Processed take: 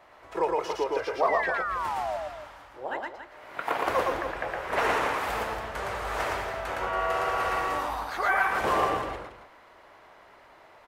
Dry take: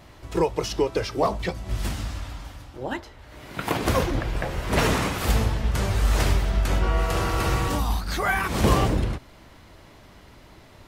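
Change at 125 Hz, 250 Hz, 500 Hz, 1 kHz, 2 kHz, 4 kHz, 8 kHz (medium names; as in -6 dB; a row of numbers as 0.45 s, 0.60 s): -20.5 dB, -12.0 dB, -2.0 dB, +2.0 dB, +0.5 dB, -7.5 dB, -11.5 dB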